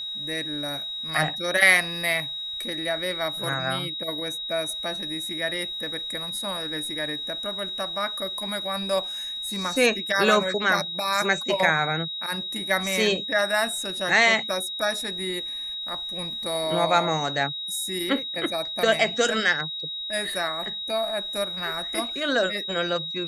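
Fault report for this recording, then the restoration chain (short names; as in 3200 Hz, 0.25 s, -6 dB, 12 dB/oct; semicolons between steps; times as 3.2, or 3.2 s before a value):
tone 3800 Hz -30 dBFS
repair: notch 3800 Hz, Q 30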